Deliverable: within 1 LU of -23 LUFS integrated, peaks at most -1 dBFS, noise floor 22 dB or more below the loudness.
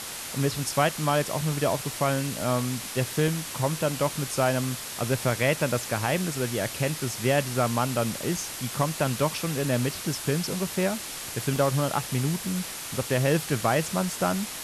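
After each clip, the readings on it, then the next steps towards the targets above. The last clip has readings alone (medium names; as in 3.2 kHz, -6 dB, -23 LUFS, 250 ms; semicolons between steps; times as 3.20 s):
dropouts 4; longest dropout 1.9 ms; noise floor -37 dBFS; noise floor target -49 dBFS; loudness -27.0 LUFS; peak level -9.5 dBFS; loudness target -23.0 LUFS
-> interpolate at 3.28/10.98/11.56/12.47 s, 1.9 ms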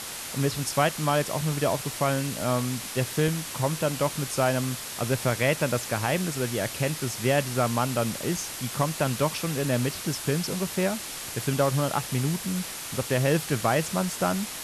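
dropouts 0; noise floor -37 dBFS; noise floor target -49 dBFS
-> noise reduction 12 dB, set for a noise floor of -37 dBFS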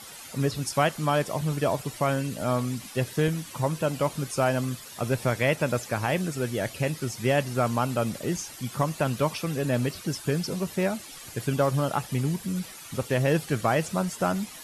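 noise floor -44 dBFS; noise floor target -50 dBFS
-> noise reduction 6 dB, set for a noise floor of -44 dBFS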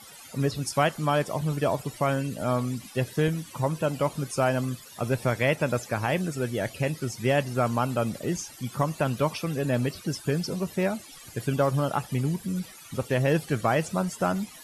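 noise floor -47 dBFS; noise floor target -50 dBFS
-> noise reduction 6 dB, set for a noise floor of -47 dBFS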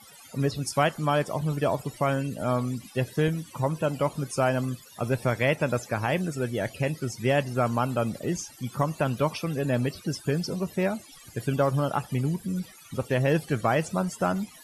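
noise floor -50 dBFS; loudness -27.5 LUFS; peak level -9.5 dBFS; loudness target -23.0 LUFS
-> trim +4.5 dB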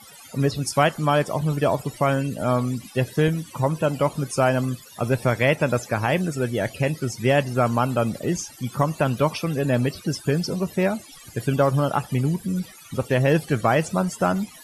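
loudness -23.0 LUFS; peak level -5.0 dBFS; noise floor -46 dBFS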